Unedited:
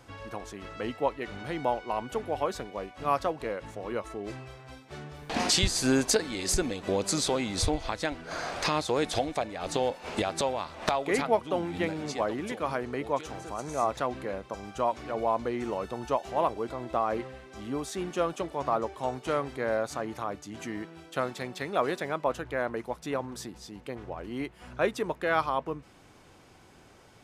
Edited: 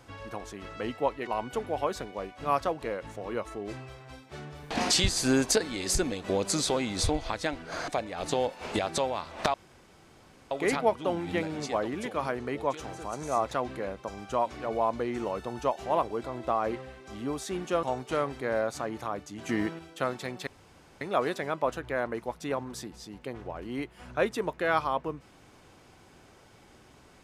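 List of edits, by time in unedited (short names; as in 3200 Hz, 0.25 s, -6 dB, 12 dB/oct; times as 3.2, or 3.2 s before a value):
1.27–1.86 cut
8.47–9.31 cut
10.97 insert room tone 0.97 s
18.29–18.99 cut
20.65–20.95 gain +7.5 dB
21.63 insert room tone 0.54 s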